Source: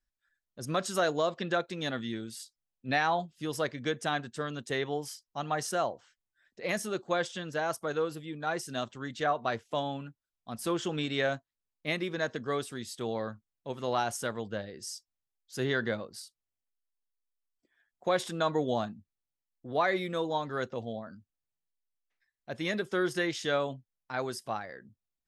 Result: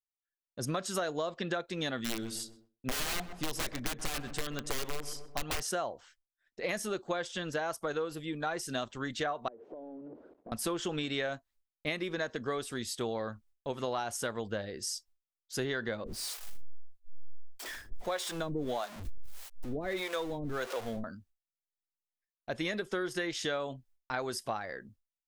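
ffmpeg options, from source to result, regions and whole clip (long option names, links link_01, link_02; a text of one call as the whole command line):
ffmpeg -i in.wav -filter_complex "[0:a]asettb=1/sr,asplit=3[link_01][link_02][link_03];[link_01]atrim=end=1.974[link_04];[link_02]atrim=start=1.97:end=5.61,asetpts=PTS-STARTPTS,afade=type=in:duration=0.004:curve=qsin,afade=type=out:start_time=3.636:duration=0.004:curve=qsin,aeval=exprs='(mod(23.7*val(0)+1,2)-1)/23.7':channel_layout=same,bandreject=frequency=890:width=14,asplit=2[link_05][link_06];[link_06]adelay=128,lowpass=frequency=1200:poles=1,volume=-13dB,asplit=2[link_07][link_08];[link_08]adelay=128,lowpass=frequency=1200:poles=1,volume=0.47,asplit=2[link_09][link_10];[link_10]adelay=128,lowpass=frequency=1200:poles=1,volume=0.47,asplit=2[link_11][link_12];[link_12]adelay=128,lowpass=frequency=1200:poles=1,volume=0.47,asplit=2[link_13][link_14];[link_14]adelay=128,lowpass=frequency=1200:poles=1,volume=0.47[link_15];[link_05][link_07][link_09][link_11][link_13][link_15]amix=inputs=6:normalize=0,atrim=end_sample=160524[link_16];[link_03]atrim=start=5.606[link_17];[link_04][link_16]acrossfade=duration=0.004:curve1=hsin:curve2=qsin[link_18];[link_18][link_17]acrossfade=duration=0.004:curve1=qsin:curve2=hsin,asettb=1/sr,asplit=3[link_19][link_20][link_21];[link_19]atrim=end=9.484[link_22];[link_20]atrim=start=9.48:end=10.52,asetpts=PTS-STARTPTS,afade=type=in:duration=0.004:curve=qsin,afade=type=out:start_time=1.036:duration=0.004:curve=qsin,aeval=exprs='val(0)+0.5*0.0211*sgn(val(0))':channel_layout=same,asuperpass=centerf=380:order=4:qfactor=1.3,acompressor=threshold=-46dB:ratio=12:attack=3.2:release=140:knee=1:detection=peak[link_23];[link_21]atrim=start=10.516[link_24];[link_22][link_23]acrossfade=duration=0.004:curve1=hsin:curve2=qsin[link_25];[link_25][link_24]acrossfade=duration=0.004:curve1=qsin:curve2=hsin,asettb=1/sr,asplit=3[link_26][link_27][link_28];[link_26]atrim=end=16.044[link_29];[link_27]atrim=start=16.04:end=21.04,asetpts=PTS-STARTPTS,afade=type=in:duration=0.004:curve=qsin,afade=type=out:start_time=4.996:duration=0.004:curve=qsin,aeval=exprs='val(0)+0.5*0.0141*sgn(val(0))':channel_layout=same,acrossover=split=410[link_30][link_31];[link_30]aeval=exprs='val(0)*(1-1/2+1/2*cos(2*PI*1.6*n/s))':channel_layout=same[link_32];[link_31]aeval=exprs='val(0)*(1-1/2-1/2*cos(2*PI*1.6*n/s))':channel_layout=same[link_33];[link_32][link_33]amix=inputs=2:normalize=0[link_34];[link_28]atrim=start=21.036[link_35];[link_29][link_34]acrossfade=duration=0.004:curve1=hsin:curve2=qsin[link_36];[link_36][link_35]acrossfade=duration=0.004:curve1=qsin:curve2=hsin,agate=range=-33dB:threshold=-59dB:ratio=3:detection=peak,asubboost=boost=6:cutoff=50,acompressor=threshold=-36dB:ratio=6,volume=5dB" out.wav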